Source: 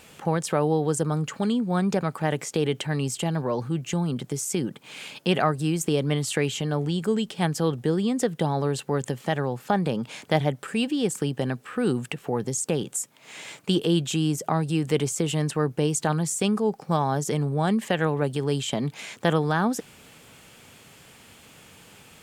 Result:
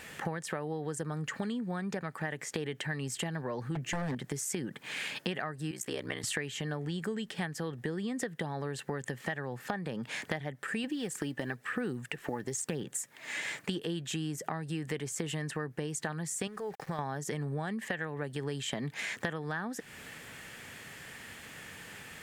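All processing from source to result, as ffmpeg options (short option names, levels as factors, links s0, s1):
-filter_complex "[0:a]asettb=1/sr,asplit=3[s0][s1][s2];[s0]atrim=end=3.754[s3];[s1]atrim=start=3.75:end=4.15,asetpts=PTS-STARTPTS,afade=t=in:d=0.004:c=qsin,afade=t=out:st=0.396:d=0.004:c=qsin,equalizer=f=280:w=0.31:g=6.5,aeval=exprs='0.106*(abs(mod(val(0)/0.106+3,4)-2)-1)':c=same[s4];[s2]atrim=start=4.146[s5];[s3][s4]acrossfade=d=0.004:c1=hsin:c2=qsin[s6];[s6][s5]acrossfade=d=0.004:c1=qsin:c2=hsin,asettb=1/sr,asplit=3[s7][s8][s9];[s7]atrim=end=5.714[s10];[s8]atrim=start=5.71:end=6.24,asetpts=PTS-STARTPTS,afade=t=in:d=0.004:c=qsin,afade=t=out:st=0.526:d=0.004:c=qsin,highpass=f=540:p=1,aeval=exprs='val(0)*sin(2*PI*31*n/s)':c=same[s11];[s9]atrim=start=6.236[s12];[s10][s11]acrossfade=d=0.004:c1=hsin:c2=qsin[s13];[s13][s12]acrossfade=d=0.004:c1=qsin:c2=hsin,asettb=1/sr,asplit=3[s14][s15][s16];[s14]atrim=end=10.844[s17];[s15]atrim=start=10.84:end=13.4,asetpts=PTS-STARTPTS,afade=t=in:d=0.004:c=qsin,afade=t=out:st=2.556:d=0.004:c=qsin,acrusher=bits=9:mode=log:mix=0:aa=0.000001,aphaser=in_gain=1:out_gain=1:delay=3.5:decay=0.41:speed=1:type=sinusoidal[s18];[s16]atrim=start=13.396[s19];[s17][s18]acrossfade=d=0.004:c1=hsin:c2=qsin[s20];[s20][s19]acrossfade=d=0.004:c1=qsin:c2=hsin,asettb=1/sr,asplit=3[s21][s22][s23];[s21]atrim=end=16.474[s24];[s22]atrim=start=16.47:end=16.99,asetpts=PTS-STARTPTS,afade=t=in:d=0.004:c=qsin,afade=t=out:st=0.516:d=0.004:c=qsin,acompressor=threshold=0.0501:ratio=4:attack=3.2:release=140:knee=1:detection=peak,equalizer=f=230:w=3.1:g=-11.5,aeval=exprs='val(0)*gte(abs(val(0)),0.00335)':c=same[s25];[s23]atrim=start=16.986[s26];[s24][s25]acrossfade=d=0.004:c1=hsin:c2=qsin[s27];[s27][s26]acrossfade=d=0.004:c1=qsin:c2=hsin,equalizer=f=1800:w=3.3:g=13,acompressor=threshold=0.0251:ratio=10"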